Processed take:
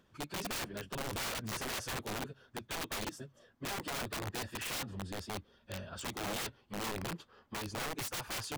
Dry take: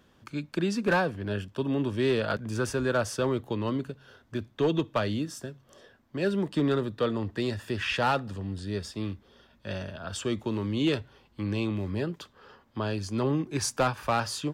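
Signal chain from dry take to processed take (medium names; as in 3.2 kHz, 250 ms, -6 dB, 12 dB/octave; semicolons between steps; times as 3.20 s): plain phase-vocoder stretch 0.59×; integer overflow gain 28.5 dB; trim -4.5 dB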